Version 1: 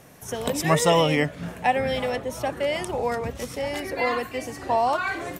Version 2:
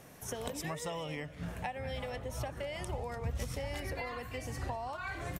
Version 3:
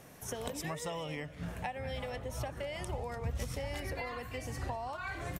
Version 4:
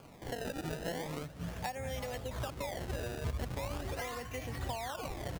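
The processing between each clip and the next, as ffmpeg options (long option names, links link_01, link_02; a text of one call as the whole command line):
ffmpeg -i in.wav -filter_complex "[0:a]acompressor=threshold=-31dB:ratio=10,asubboost=boost=8:cutoff=110,asplit=2[link_01][link_02];[link_02]adelay=198.3,volume=-17dB,highshelf=frequency=4000:gain=-4.46[link_03];[link_01][link_03]amix=inputs=2:normalize=0,volume=-4.5dB" out.wav
ffmpeg -i in.wav -af anull out.wav
ffmpeg -i in.wav -af "acrusher=samples=23:mix=1:aa=0.000001:lfo=1:lforange=36.8:lforate=0.4" out.wav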